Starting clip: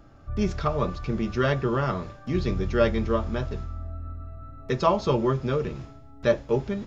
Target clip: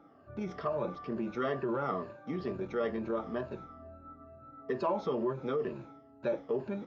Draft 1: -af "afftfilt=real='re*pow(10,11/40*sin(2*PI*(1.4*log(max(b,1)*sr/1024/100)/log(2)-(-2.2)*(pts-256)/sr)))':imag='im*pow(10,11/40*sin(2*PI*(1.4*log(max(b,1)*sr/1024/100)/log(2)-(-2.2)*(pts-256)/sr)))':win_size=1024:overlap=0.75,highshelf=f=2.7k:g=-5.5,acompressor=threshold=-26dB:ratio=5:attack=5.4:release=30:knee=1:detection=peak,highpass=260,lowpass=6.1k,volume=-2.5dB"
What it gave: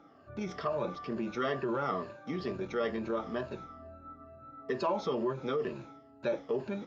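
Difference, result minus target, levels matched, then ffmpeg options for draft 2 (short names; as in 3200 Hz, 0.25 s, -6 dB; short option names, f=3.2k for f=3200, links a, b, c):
4000 Hz band +6.0 dB
-af "afftfilt=real='re*pow(10,11/40*sin(2*PI*(1.4*log(max(b,1)*sr/1024/100)/log(2)-(-2.2)*(pts-256)/sr)))':imag='im*pow(10,11/40*sin(2*PI*(1.4*log(max(b,1)*sr/1024/100)/log(2)-(-2.2)*(pts-256)/sr)))':win_size=1024:overlap=0.75,highshelf=f=2.7k:g=-16.5,acompressor=threshold=-26dB:ratio=5:attack=5.4:release=30:knee=1:detection=peak,highpass=260,lowpass=6.1k,volume=-2.5dB"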